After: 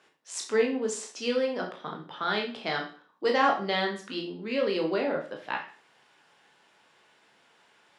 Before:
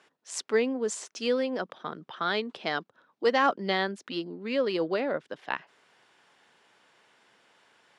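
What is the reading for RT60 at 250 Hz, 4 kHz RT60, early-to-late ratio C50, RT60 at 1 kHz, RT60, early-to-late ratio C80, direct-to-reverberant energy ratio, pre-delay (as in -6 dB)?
0.40 s, 0.40 s, 7.5 dB, 0.40 s, 0.40 s, 13.0 dB, 0.5 dB, 16 ms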